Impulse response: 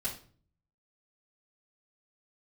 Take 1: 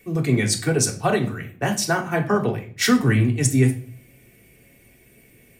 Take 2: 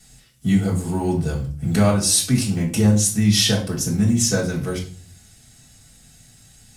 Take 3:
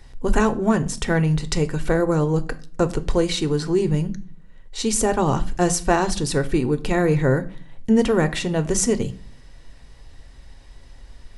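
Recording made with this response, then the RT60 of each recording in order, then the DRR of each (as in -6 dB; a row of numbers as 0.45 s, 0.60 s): 2; 0.45 s, 0.45 s, 0.45 s; 0.5 dB, -9.5 dB, 8.5 dB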